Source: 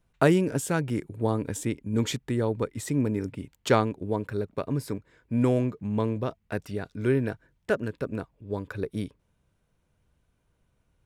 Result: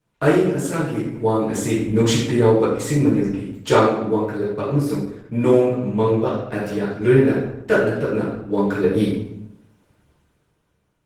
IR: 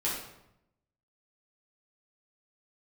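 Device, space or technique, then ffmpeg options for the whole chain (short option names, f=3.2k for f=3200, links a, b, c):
far-field microphone of a smart speaker: -filter_complex "[1:a]atrim=start_sample=2205[a];[0:a][a]afir=irnorm=-1:irlink=0,highpass=f=110:p=1,dynaudnorm=f=120:g=17:m=12dB,volume=-1.5dB" -ar 48000 -c:a libopus -b:a 16k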